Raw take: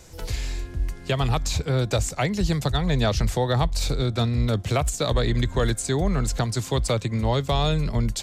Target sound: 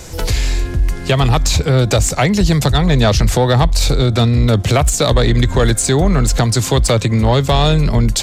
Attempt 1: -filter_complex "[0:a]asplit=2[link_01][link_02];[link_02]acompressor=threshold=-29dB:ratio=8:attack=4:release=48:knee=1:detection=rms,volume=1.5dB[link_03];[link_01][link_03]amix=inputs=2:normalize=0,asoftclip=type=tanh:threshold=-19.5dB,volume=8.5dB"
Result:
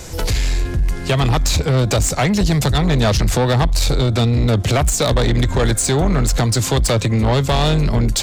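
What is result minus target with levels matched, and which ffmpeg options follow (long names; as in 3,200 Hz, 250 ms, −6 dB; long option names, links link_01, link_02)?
soft clipping: distortion +9 dB
-filter_complex "[0:a]asplit=2[link_01][link_02];[link_02]acompressor=threshold=-29dB:ratio=8:attack=4:release=48:knee=1:detection=rms,volume=1.5dB[link_03];[link_01][link_03]amix=inputs=2:normalize=0,asoftclip=type=tanh:threshold=-12dB,volume=8.5dB"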